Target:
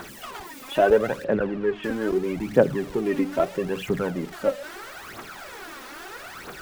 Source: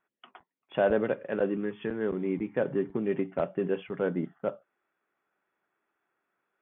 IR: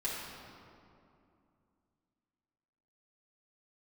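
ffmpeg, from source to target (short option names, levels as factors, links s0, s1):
-filter_complex "[0:a]aeval=exprs='val(0)+0.5*0.0112*sgn(val(0))':c=same,asettb=1/sr,asplit=3[s0][s1][s2];[s0]atrim=end=1.244[s3];[s1]atrim=start=1.24:end=1.84,asetpts=PTS-STARTPTS,afade=t=in:d=0.004:c=qsin,afade=t=out:st=0.596:d=0.004:c=qsin,lowpass=2600[s4];[s2]atrim=start=1.836[s5];[s3][s4]acrossfade=d=0.004:c1=hsin:c2=qsin[s6];[s6][s5]acrossfade=d=0.004:c1=qsin:c2=hsin,aphaser=in_gain=1:out_gain=1:delay=4:decay=0.65:speed=0.77:type=triangular,volume=1.5"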